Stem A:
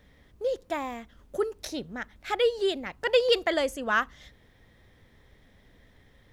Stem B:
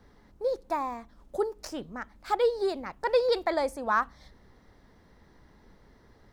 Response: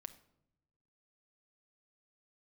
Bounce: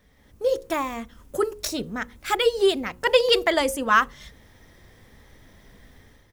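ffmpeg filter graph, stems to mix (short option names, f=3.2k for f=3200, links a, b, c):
-filter_complex "[0:a]bandreject=f=60:t=h:w=6,bandreject=f=120:t=h:w=6,bandreject=f=180:t=h:w=6,bandreject=f=240:t=h:w=6,bandreject=f=300:t=h:w=6,bandreject=f=360:t=h:w=6,bandreject=f=420:t=h:w=6,bandreject=f=480:t=h:w=6,bandreject=f=540:t=h:w=6,volume=-2.5dB[a];[1:a]aexciter=amount=4.2:drive=7.7:freq=5.3k,asplit=2[b][c];[c]adelay=2.2,afreqshift=1.2[d];[b][d]amix=inputs=2:normalize=1,adelay=0.9,volume=-6.5dB[e];[a][e]amix=inputs=2:normalize=0,dynaudnorm=f=120:g=5:m=8.5dB"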